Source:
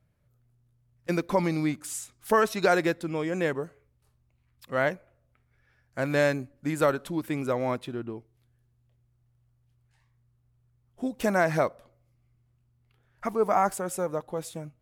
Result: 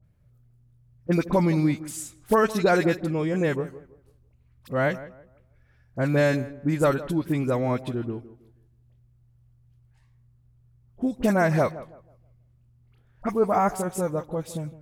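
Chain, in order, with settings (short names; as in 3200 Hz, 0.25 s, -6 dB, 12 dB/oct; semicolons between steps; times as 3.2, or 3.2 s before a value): low shelf 260 Hz +10.5 dB; dispersion highs, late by 40 ms, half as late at 1700 Hz; tape echo 0.163 s, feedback 33%, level -14.5 dB, low-pass 1400 Hz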